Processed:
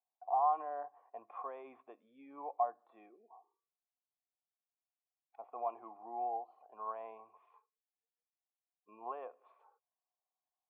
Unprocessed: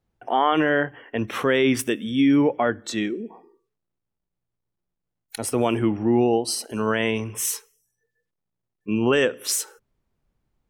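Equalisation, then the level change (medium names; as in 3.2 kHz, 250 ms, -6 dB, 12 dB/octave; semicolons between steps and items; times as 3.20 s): cascade formant filter a; high-pass 470 Hz 12 dB/octave; -3.5 dB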